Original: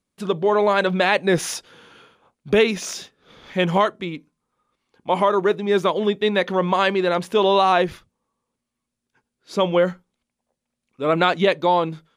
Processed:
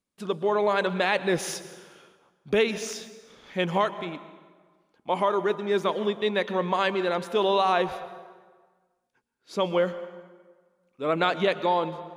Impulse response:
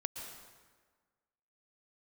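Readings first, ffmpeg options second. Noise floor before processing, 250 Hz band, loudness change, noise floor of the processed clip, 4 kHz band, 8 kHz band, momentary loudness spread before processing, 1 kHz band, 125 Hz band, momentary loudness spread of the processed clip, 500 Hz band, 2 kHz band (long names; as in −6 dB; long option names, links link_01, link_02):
−82 dBFS, −7.0 dB, −6.0 dB, −75 dBFS, −5.5 dB, −5.5 dB, 11 LU, −5.5 dB, −8.0 dB, 14 LU, −6.0 dB, −5.5 dB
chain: -filter_complex "[0:a]asplit=2[link_01][link_02];[link_02]highpass=150[link_03];[1:a]atrim=start_sample=2205[link_04];[link_03][link_04]afir=irnorm=-1:irlink=0,volume=-5.5dB[link_05];[link_01][link_05]amix=inputs=2:normalize=0,volume=-9dB"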